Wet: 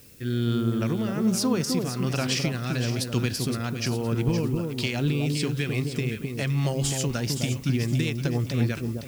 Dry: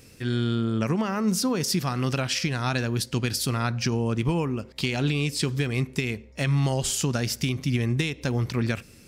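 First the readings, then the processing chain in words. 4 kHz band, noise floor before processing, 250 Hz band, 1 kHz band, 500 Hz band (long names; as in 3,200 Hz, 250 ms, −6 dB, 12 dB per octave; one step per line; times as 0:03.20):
−1.5 dB, −50 dBFS, +0.5 dB, −4.5 dB, 0.0 dB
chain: rotating-speaker cabinet horn 1.2 Hz, later 7.5 Hz, at 0:06.16
background noise blue −54 dBFS
delay that swaps between a low-pass and a high-pass 258 ms, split 930 Hz, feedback 54%, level −3.5 dB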